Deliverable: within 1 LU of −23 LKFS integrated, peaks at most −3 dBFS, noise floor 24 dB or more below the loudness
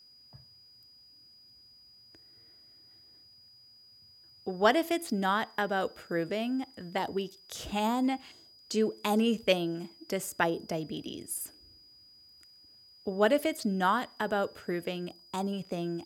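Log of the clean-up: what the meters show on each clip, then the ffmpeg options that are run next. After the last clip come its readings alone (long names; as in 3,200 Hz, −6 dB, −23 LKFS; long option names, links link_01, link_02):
interfering tone 4,900 Hz; level of the tone −55 dBFS; integrated loudness −31.5 LKFS; sample peak −10.5 dBFS; target loudness −23.0 LKFS
→ -af "bandreject=frequency=4900:width=30"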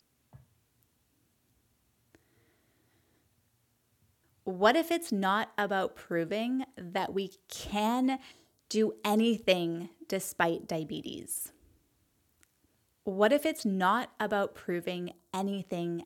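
interfering tone none found; integrated loudness −31.5 LKFS; sample peak −10.5 dBFS; target loudness −23.0 LKFS
→ -af "volume=8.5dB,alimiter=limit=-3dB:level=0:latency=1"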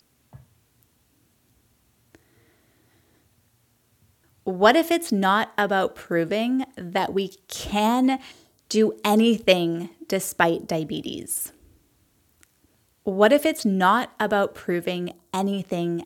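integrated loudness −23.0 LKFS; sample peak −3.0 dBFS; background noise floor −65 dBFS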